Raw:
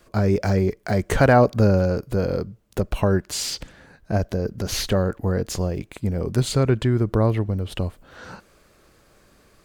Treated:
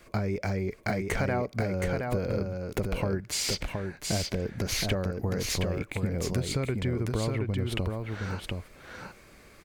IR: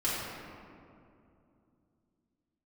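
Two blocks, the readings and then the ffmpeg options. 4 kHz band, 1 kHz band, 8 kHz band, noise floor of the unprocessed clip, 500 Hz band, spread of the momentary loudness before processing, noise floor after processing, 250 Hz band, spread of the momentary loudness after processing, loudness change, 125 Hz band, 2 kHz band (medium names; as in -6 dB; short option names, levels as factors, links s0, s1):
-2.5 dB, -10.0 dB, -2.5 dB, -57 dBFS, -9.5 dB, 12 LU, -54 dBFS, -8.5 dB, 6 LU, -8.5 dB, -8.0 dB, -5.0 dB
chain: -af "equalizer=f=2200:t=o:w=0.31:g=9.5,acompressor=threshold=0.0501:ratio=10,aecho=1:1:720:0.631"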